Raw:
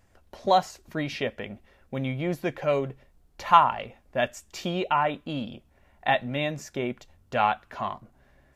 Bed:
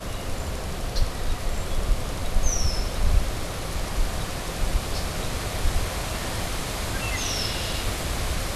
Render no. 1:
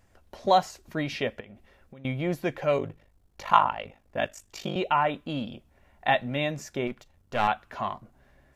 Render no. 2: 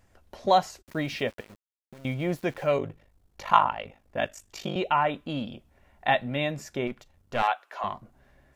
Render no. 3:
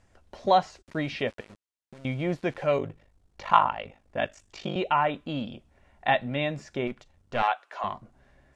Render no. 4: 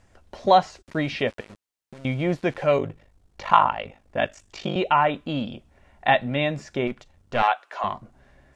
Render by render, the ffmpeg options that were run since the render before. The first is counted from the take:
-filter_complex "[0:a]asettb=1/sr,asplit=3[a][b][c];[a]atrim=end=1.404[d];[b]atrim=start=1.4:end=2.05,asetpts=PTS-STARTPTS,afade=t=in:d=0.004:c=qsin,afade=t=out:st=0.646:d=0.004:c=qsin,acompressor=threshold=-43dB:ratio=10:attack=3.2:release=140:knee=1:detection=peak[e];[c]atrim=start=2.046[f];[d][e]acrossfade=d=0.004:c1=hsin:c2=qsin[g];[g][f]acrossfade=d=0.004:c1=qsin:c2=hsin,asettb=1/sr,asplit=3[h][i][j];[h]atrim=end=2.774[k];[i]atrim=start=2.77:end=4.76,asetpts=PTS-STARTPTS,afade=t=in:d=0.004:c=qsin,afade=t=out:st=1.986:d=0.004:c=qsin,aeval=exprs='val(0)*sin(2*PI*25*n/s)':c=same[l];[j]atrim=start=4.756[m];[k][l]acrossfade=d=0.004:c1=hsin:c2=qsin[n];[n][m]acrossfade=d=0.004:c1=qsin:c2=hsin,asettb=1/sr,asplit=3[o][p][q];[o]atrim=end=6.874[r];[p]atrim=start=6.87:end=7.48,asetpts=PTS-STARTPTS,afade=t=in:d=0.004:c=qsin,afade=t=out:st=0.606:d=0.004:c=qsin,aeval=exprs='if(lt(val(0),0),0.447*val(0),val(0))':c=same[s];[q]atrim=start=7.476[t];[r][s]acrossfade=d=0.004:c1=hsin:c2=qsin[u];[u][t]acrossfade=d=0.004:c1=qsin:c2=hsin"
-filter_complex "[0:a]asplit=3[a][b][c];[a]afade=t=out:st=0.81:d=0.02[d];[b]aeval=exprs='val(0)*gte(abs(val(0)),0.00473)':c=same,afade=t=in:st=0.81:d=0.02,afade=t=out:st=2.71:d=0.02[e];[c]afade=t=in:st=2.71:d=0.02[f];[d][e][f]amix=inputs=3:normalize=0,asettb=1/sr,asplit=3[g][h][i];[g]atrim=end=6.074[j];[h]atrim=start=6.07:end=6.66,asetpts=PTS-STARTPTS,afade=t=in:d=0.004:c=qsin,afade=t=out:st=0.586:d=0.004:c=qsin,bandreject=f=6.1k:w=6.9[k];[i]atrim=start=6.656[l];[j][k]acrossfade=d=0.004:c1=hsin:c2=qsin[m];[m][l]acrossfade=d=0.004:c1=qsin:c2=hsin,asettb=1/sr,asplit=3[n][o][p];[n]atrim=end=7.424[q];[o]atrim=start=7.42:end=7.84,asetpts=PTS-STARTPTS,afade=t=in:d=0.004:c=qsin,afade=t=out:st=0.416:d=0.004:c=qsin,highpass=f=460:w=0.5412,highpass=f=460:w=1.3066[r];[p]atrim=start=7.836[s];[q][r]acrossfade=d=0.004:c1=hsin:c2=qsin[t];[t][s]acrossfade=d=0.004:c1=qsin:c2=hsin"
-filter_complex "[0:a]acrossover=split=5000[a][b];[b]acompressor=threshold=-59dB:ratio=4:attack=1:release=60[c];[a][c]amix=inputs=2:normalize=0,lowpass=f=9.7k:w=0.5412,lowpass=f=9.7k:w=1.3066"
-af "volume=4.5dB,alimiter=limit=-2dB:level=0:latency=1"

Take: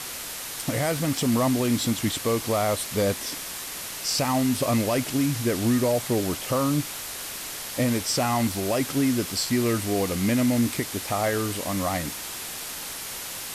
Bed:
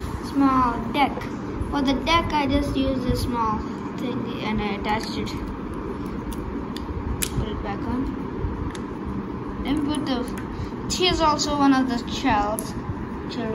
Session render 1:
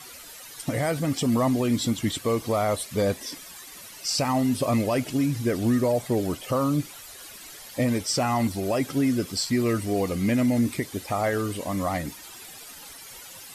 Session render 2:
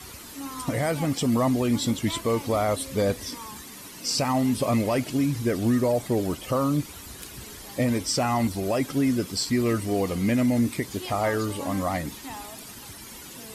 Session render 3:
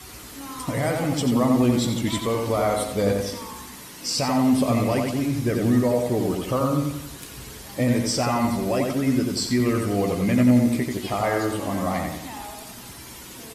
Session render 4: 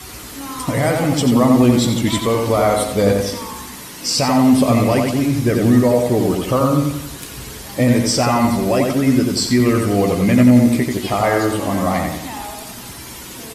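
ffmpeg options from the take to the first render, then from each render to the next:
-af "afftdn=nr=13:nf=-35"
-filter_complex "[1:a]volume=-18.5dB[a];[0:a][a]amix=inputs=2:normalize=0"
-filter_complex "[0:a]asplit=2[a][b];[b]adelay=16,volume=-10.5dB[c];[a][c]amix=inputs=2:normalize=0,asplit=2[d][e];[e]adelay=89,lowpass=f=3.3k:p=1,volume=-3dB,asplit=2[f][g];[g]adelay=89,lowpass=f=3.3k:p=1,volume=0.48,asplit=2[h][i];[i]adelay=89,lowpass=f=3.3k:p=1,volume=0.48,asplit=2[j][k];[k]adelay=89,lowpass=f=3.3k:p=1,volume=0.48,asplit=2[l][m];[m]adelay=89,lowpass=f=3.3k:p=1,volume=0.48,asplit=2[n][o];[o]adelay=89,lowpass=f=3.3k:p=1,volume=0.48[p];[d][f][h][j][l][n][p]amix=inputs=7:normalize=0"
-af "volume=7dB,alimiter=limit=-2dB:level=0:latency=1"

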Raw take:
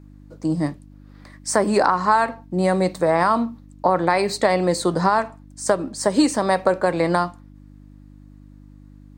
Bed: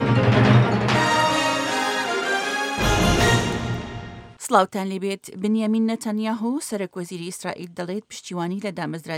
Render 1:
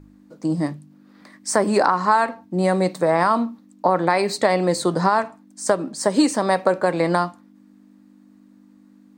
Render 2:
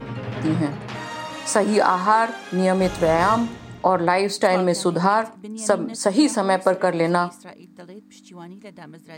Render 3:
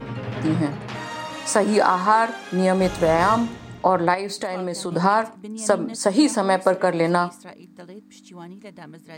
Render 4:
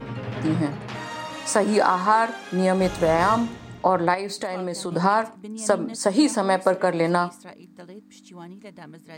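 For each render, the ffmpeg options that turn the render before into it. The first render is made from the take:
-af "bandreject=f=50:t=h:w=4,bandreject=f=100:t=h:w=4,bandreject=f=150:t=h:w=4"
-filter_complex "[1:a]volume=-13dB[a];[0:a][a]amix=inputs=2:normalize=0"
-filter_complex "[0:a]asettb=1/sr,asplit=3[a][b][c];[a]atrim=end=4.144[d];[b]atrim=start=4.14:end=4.92,asetpts=PTS-STARTPTS,afade=t=in:d=0.004:c=qsin,afade=t=out:st=0.776:d=0.004:c=qsin,acompressor=threshold=-27dB:ratio=2.5:attack=3.2:release=140:knee=1:detection=peak[e];[c]atrim=start=4.916[f];[d][e]acrossfade=d=0.004:c1=hsin:c2=qsin[g];[g][f]acrossfade=d=0.004:c1=qsin:c2=hsin"
-af "volume=-1.5dB"

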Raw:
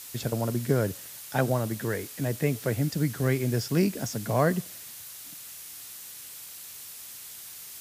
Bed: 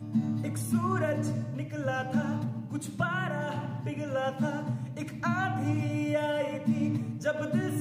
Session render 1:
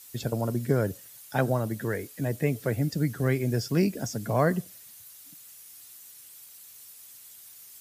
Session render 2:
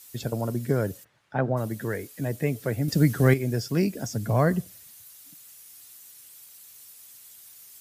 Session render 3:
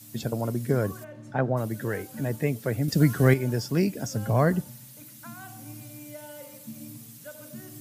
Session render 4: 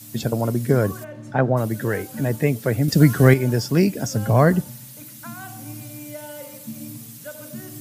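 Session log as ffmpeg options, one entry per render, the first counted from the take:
-af "afftdn=nr=10:nf=-44"
-filter_complex "[0:a]asplit=3[a][b][c];[a]afade=t=out:st=1.03:d=0.02[d];[b]lowpass=1.8k,afade=t=in:st=1.03:d=0.02,afade=t=out:st=1.56:d=0.02[e];[c]afade=t=in:st=1.56:d=0.02[f];[d][e][f]amix=inputs=3:normalize=0,asettb=1/sr,asplit=3[g][h][i];[g]atrim=end=2.884[j];[h]atrim=start=2.88:end=3.34,asetpts=PTS-STARTPTS,afade=t=in:d=0.004:c=qsin,afade=t=out:st=0.456:d=0.004:c=qsin,acontrast=81[k];[i]atrim=start=3.336[l];[j][k]acrossfade=d=0.004:c1=hsin:c2=qsin[m];[m][l]acrossfade=d=0.004:c1=qsin:c2=hsin,asettb=1/sr,asplit=3[n][o][p];[n]atrim=end=4.114[q];[o]atrim=start=4.11:end=4.87,asetpts=PTS-STARTPTS,afade=t=in:d=0.004:c=qsin,afade=t=out:st=0.756:d=0.004:c=qsin,equalizer=f=65:t=o:w=1.7:g=11.5[r];[p]atrim=start=4.866[s];[q][r]acrossfade=d=0.004:c1=hsin:c2=qsin[t];[t][s]acrossfade=d=0.004:c1=qsin:c2=hsin"
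-filter_complex "[1:a]volume=-14.5dB[a];[0:a][a]amix=inputs=2:normalize=0"
-af "volume=6.5dB,alimiter=limit=-2dB:level=0:latency=1"

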